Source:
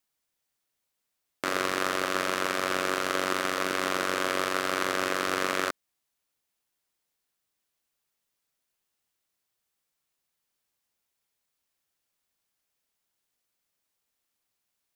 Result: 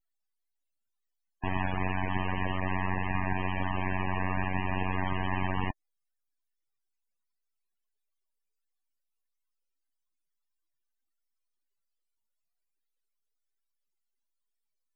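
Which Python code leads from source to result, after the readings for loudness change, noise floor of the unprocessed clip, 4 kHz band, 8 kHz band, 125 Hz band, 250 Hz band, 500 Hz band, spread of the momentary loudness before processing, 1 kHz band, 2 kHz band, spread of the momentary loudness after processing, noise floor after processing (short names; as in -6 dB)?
-4.0 dB, -82 dBFS, -13.0 dB, under -40 dB, +15.0 dB, +1.0 dB, -9.0 dB, 2 LU, -3.0 dB, -5.5 dB, 2 LU, -82 dBFS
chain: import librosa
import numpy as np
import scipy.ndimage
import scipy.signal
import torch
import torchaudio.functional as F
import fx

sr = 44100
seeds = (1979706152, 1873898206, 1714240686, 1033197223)

y = np.abs(x)
y = fx.spec_topn(y, sr, count=32)
y = y * librosa.db_to_amplitude(1.5)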